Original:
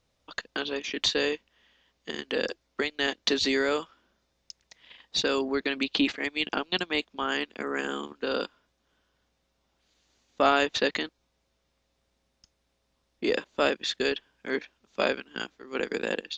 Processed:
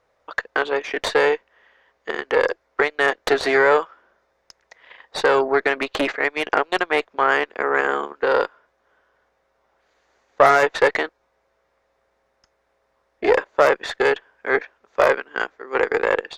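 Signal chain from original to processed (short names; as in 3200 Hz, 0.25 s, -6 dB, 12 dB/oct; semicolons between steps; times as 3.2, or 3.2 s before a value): added harmonics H 5 -7 dB, 6 -8 dB, 7 -19 dB, 8 -21 dB, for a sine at -7.5 dBFS; band shelf 900 Hz +15 dB 2.8 oct; gain -10.5 dB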